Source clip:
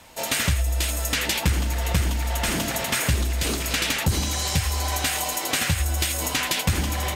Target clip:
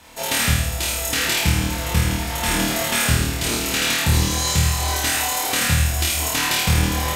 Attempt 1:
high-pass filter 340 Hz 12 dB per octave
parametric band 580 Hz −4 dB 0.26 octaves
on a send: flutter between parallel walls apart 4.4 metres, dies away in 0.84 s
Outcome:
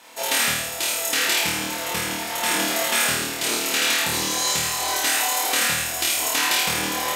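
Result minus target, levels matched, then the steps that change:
250 Hz band −5.5 dB
remove: high-pass filter 340 Hz 12 dB per octave

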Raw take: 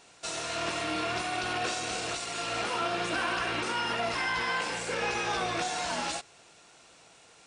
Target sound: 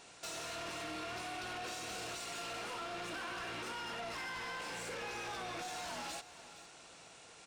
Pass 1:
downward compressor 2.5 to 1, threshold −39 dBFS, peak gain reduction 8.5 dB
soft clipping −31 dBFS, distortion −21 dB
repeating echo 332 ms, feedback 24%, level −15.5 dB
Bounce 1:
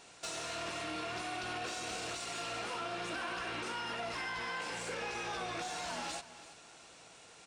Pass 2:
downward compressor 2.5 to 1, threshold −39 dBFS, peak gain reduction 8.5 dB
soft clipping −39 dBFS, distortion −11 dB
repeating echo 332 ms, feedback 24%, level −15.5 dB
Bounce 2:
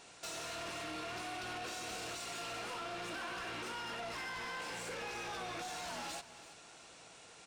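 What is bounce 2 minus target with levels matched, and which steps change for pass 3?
echo 131 ms early
change: repeating echo 463 ms, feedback 24%, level −15.5 dB

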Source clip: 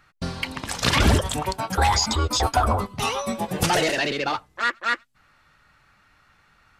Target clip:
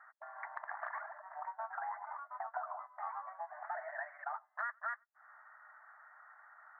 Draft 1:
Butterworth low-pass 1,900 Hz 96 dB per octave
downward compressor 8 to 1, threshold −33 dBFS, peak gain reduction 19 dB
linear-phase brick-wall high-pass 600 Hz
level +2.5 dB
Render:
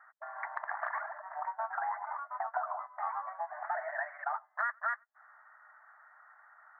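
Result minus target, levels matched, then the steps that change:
downward compressor: peak gain reduction −6 dB
change: downward compressor 8 to 1, threshold −40 dBFS, peak gain reduction 25.5 dB

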